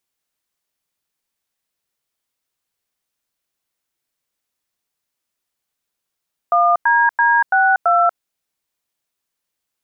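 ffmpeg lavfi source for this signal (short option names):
-f lavfi -i "aevalsrc='0.211*clip(min(mod(t,0.334),0.238-mod(t,0.334))/0.002,0,1)*(eq(floor(t/0.334),0)*(sin(2*PI*697*mod(t,0.334))+sin(2*PI*1209*mod(t,0.334)))+eq(floor(t/0.334),1)*(sin(2*PI*941*mod(t,0.334))+sin(2*PI*1633*mod(t,0.334)))+eq(floor(t/0.334),2)*(sin(2*PI*941*mod(t,0.334))+sin(2*PI*1633*mod(t,0.334)))+eq(floor(t/0.334),3)*(sin(2*PI*770*mod(t,0.334))+sin(2*PI*1477*mod(t,0.334)))+eq(floor(t/0.334),4)*(sin(2*PI*697*mod(t,0.334))+sin(2*PI*1336*mod(t,0.334))))':d=1.67:s=44100"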